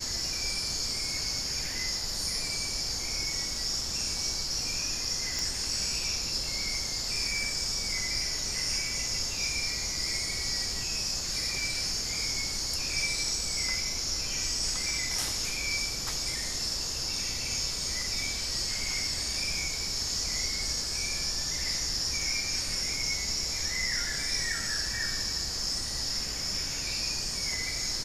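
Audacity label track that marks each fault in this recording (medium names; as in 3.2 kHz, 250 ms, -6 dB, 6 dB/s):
5.390000	5.390000	pop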